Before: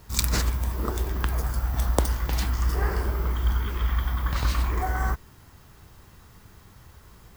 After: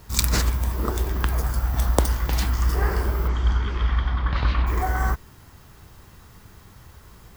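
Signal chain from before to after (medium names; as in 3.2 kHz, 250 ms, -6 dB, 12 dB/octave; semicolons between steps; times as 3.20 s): 3.27–4.66 s: low-pass 7.5 kHz -> 3.4 kHz 24 dB/octave; trim +3 dB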